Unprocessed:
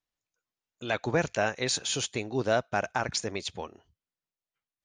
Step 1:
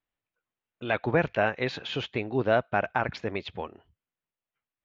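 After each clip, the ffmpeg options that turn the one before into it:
ffmpeg -i in.wav -af "lowpass=frequency=3100:width=0.5412,lowpass=frequency=3100:width=1.3066,volume=2.5dB" out.wav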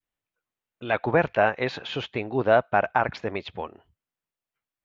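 ffmpeg -i in.wav -af "adynamicequalizer=threshold=0.0178:dfrequency=860:dqfactor=0.73:tfrequency=860:tqfactor=0.73:attack=5:release=100:ratio=0.375:range=3:mode=boostabove:tftype=bell" out.wav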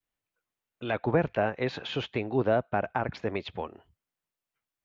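ffmpeg -i in.wav -filter_complex "[0:a]acrossover=split=450[link_01][link_02];[link_02]acompressor=threshold=-35dB:ratio=2[link_03];[link_01][link_03]amix=inputs=2:normalize=0" out.wav

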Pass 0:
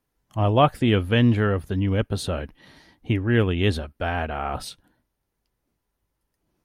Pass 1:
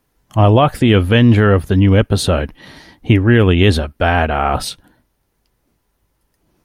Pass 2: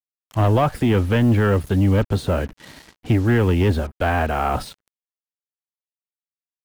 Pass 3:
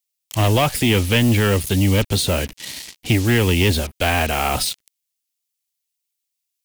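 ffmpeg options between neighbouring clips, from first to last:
ffmpeg -i in.wav -af "alimiter=level_in=13dB:limit=-1dB:release=50:level=0:latency=1,volume=-1dB" out.wav
ffmpeg -i in.wav -filter_complex "[0:a]acrossover=split=300|390|2200[link_01][link_02][link_03][link_04];[link_04]acompressor=threshold=-34dB:ratio=6[link_05];[link_01][link_02][link_03][link_05]amix=inputs=4:normalize=0,asoftclip=type=tanh:threshold=-6dB,acrusher=bits=5:mix=0:aa=0.5,volume=-4dB" out.wav
ffmpeg -i in.wav -af "aexciter=amount=5:drive=4.5:freq=2100" out.wav

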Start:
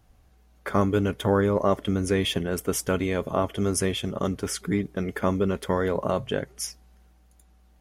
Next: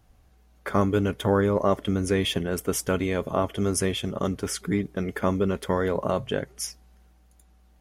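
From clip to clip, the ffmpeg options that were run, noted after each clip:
ffmpeg -i in.wav -af anull out.wav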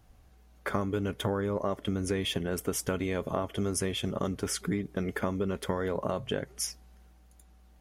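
ffmpeg -i in.wav -af "acompressor=threshold=-27dB:ratio=5" out.wav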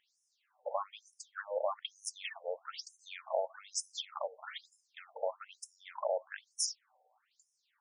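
ffmpeg -i in.wav -af "afftfilt=real='re*between(b*sr/1024,620*pow(7400/620,0.5+0.5*sin(2*PI*1.1*pts/sr))/1.41,620*pow(7400/620,0.5+0.5*sin(2*PI*1.1*pts/sr))*1.41)':imag='im*between(b*sr/1024,620*pow(7400/620,0.5+0.5*sin(2*PI*1.1*pts/sr))/1.41,620*pow(7400/620,0.5+0.5*sin(2*PI*1.1*pts/sr))*1.41)':win_size=1024:overlap=0.75,volume=1dB" out.wav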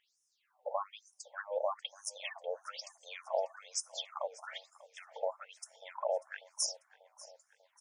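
ffmpeg -i in.wav -af "aecho=1:1:592|1184|1776|2368|2960:0.1|0.057|0.0325|0.0185|0.0106" out.wav

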